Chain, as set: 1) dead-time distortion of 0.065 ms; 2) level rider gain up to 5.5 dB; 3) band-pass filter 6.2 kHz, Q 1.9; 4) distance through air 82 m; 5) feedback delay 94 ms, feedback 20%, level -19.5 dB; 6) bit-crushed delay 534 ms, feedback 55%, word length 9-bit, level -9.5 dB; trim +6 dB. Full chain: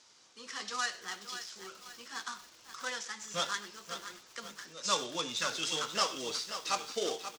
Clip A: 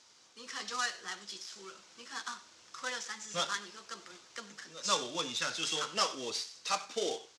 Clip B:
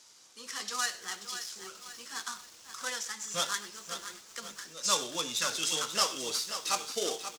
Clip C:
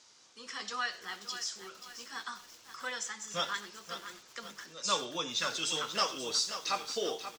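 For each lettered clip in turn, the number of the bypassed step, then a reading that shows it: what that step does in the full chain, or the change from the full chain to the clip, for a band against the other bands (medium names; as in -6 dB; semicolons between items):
6, momentary loudness spread change +1 LU; 4, 8 kHz band +6.0 dB; 1, distortion -20 dB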